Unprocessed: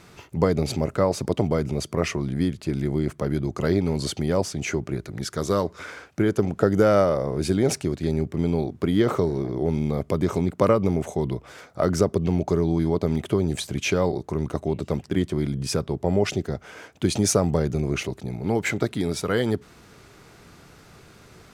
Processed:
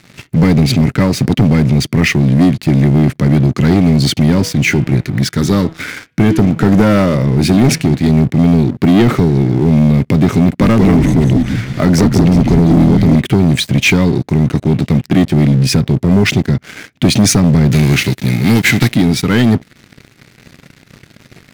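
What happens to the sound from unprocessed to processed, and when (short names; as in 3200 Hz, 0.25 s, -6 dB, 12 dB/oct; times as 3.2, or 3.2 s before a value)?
4.3–8.09 de-hum 161.7 Hz, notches 23
10.42–13.16 frequency-shifting echo 0.183 s, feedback 40%, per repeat -130 Hz, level -5 dB
17.71–18.94 spectral whitening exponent 0.6
whole clip: graphic EQ 125/250/500/1000/2000/4000/8000 Hz +10/+11/-4/-6/+11/+5/-4 dB; sample leveller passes 3; high shelf 6700 Hz +5.5 dB; gain -3 dB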